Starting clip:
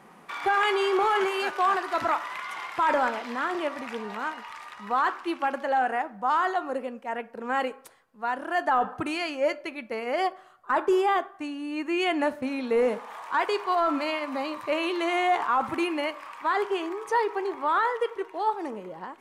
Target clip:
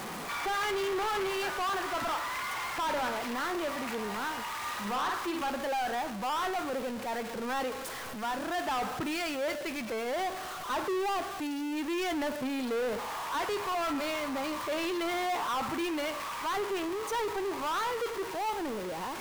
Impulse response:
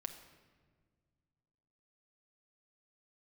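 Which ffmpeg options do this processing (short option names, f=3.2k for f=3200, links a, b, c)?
-filter_complex "[0:a]aeval=exprs='val(0)+0.5*0.0299*sgn(val(0))':c=same,asettb=1/sr,asplit=3[a][b][c];[a]atrim=end=4.574[d];[b]atrim=start=4.57:end=5.5,asetpts=PTS-STARTPTS,afade=t=in:d=0.004:c=qsin,afade=t=out:st=0.926:d=0.004:c=qsin,asplit=2[e][f];[f]adelay=49,volume=-2.5dB[g];[e][g]amix=inputs=2:normalize=0,atrim=end_sample=41013[h];[c]atrim=start=5.496[i];[d][h]acrossfade=d=0.004:c1=hsin:c2=qsin[j];[j][i]acrossfade=d=0.004:c1=qsin:c2=hsin,asoftclip=type=tanh:threshold=-25dB,volume=-3.5dB"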